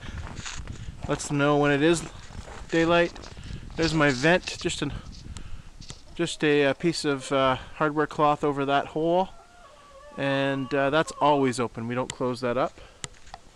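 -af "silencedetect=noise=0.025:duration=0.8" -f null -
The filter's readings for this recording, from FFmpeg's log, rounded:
silence_start: 9.26
silence_end: 10.18 | silence_duration: 0.91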